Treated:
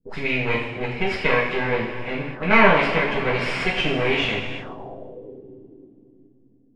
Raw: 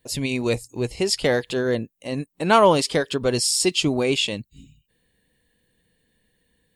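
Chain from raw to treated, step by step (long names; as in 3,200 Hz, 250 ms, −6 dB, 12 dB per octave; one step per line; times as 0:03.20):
half-wave rectification
coupled-rooms reverb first 0.59 s, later 4.2 s, from −15 dB, DRR −7 dB
envelope-controlled low-pass 270–2,300 Hz up, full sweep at −21.5 dBFS
level −5 dB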